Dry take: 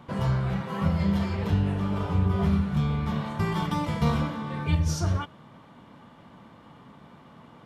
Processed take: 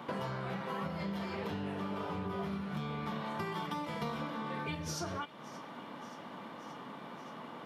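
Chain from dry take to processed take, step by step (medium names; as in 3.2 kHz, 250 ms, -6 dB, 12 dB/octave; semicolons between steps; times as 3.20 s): high-pass 260 Hz 12 dB/octave; peaking EQ 7.7 kHz -5 dB 0.76 oct; compression 6:1, threshold -42 dBFS, peak gain reduction 16.5 dB; feedback echo behind a high-pass 576 ms, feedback 72%, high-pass 1.6 kHz, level -18 dB; trim +6 dB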